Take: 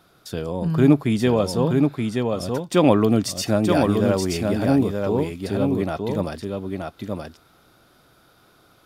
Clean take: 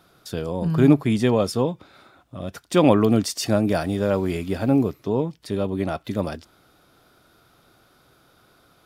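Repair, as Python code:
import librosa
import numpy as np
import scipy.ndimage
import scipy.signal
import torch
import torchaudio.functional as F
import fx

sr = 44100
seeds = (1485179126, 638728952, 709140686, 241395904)

y = fx.fix_echo_inverse(x, sr, delay_ms=926, level_db=-4.0)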